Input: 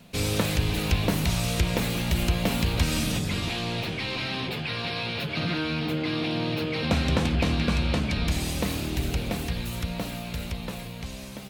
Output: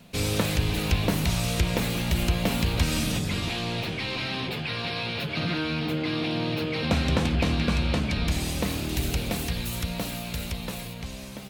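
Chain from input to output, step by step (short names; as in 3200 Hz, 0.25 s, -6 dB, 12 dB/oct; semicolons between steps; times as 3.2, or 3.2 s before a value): 8.89–10.94 high shelf 4200 Hz +6.5 dB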